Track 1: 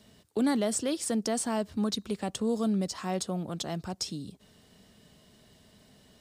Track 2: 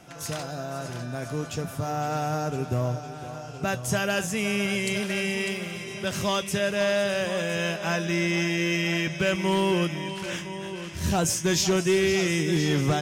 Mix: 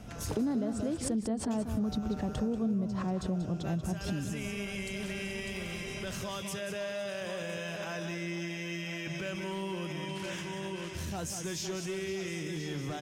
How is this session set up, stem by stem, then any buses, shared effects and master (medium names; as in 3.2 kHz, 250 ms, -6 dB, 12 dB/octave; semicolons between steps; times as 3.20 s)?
0.0 dB, 0.00 s, no send, echo send -9 dB, tilt EQ -4.5 dB/octave; swell ahead of each attack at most 140 dB/s
-3.5 dB, 0.00 s, muted 0.98–1.50 s, no send, echo send -8 dB, peak limiter -25 dBFS, peak gain reduction 9 dB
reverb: none
echo: delay 187 ms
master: compression 3:1, threshold -33 dBFS, peak gain reduction 13.5 dB